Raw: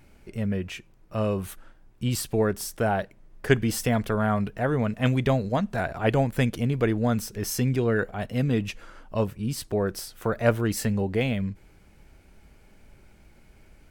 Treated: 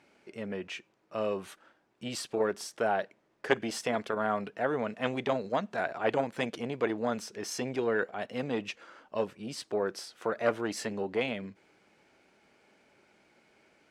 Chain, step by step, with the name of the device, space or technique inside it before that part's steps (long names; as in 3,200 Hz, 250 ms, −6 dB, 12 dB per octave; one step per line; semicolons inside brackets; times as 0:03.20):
public-address speaker with an overloaded transformer (saturating transformer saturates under 610 Hz; band-pass filter 320–6,300 Hz)
level −2 dB